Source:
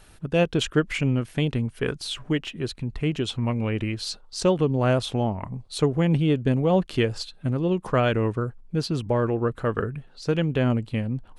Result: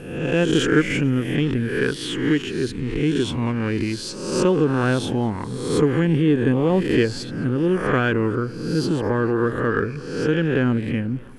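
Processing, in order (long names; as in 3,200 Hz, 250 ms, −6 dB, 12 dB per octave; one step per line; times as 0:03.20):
peak hold with a rise ahead of every peak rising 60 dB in 0.89 s
thirty-one-band graphic EQ 630 Hz −9 dB, 1,600 Hz +8 dB, 4,000 Hz −7 dB
in parallel at −12 dB: soft clipping −23.5 dBFS, distortion −8 dB
on the sum: parametric band 310 Hz +6.5 dB 1.2 octaves
feedback echo with a swinging delay time 219 ms, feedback 68%, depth 195 cents, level −23.5 dB
level −2 dB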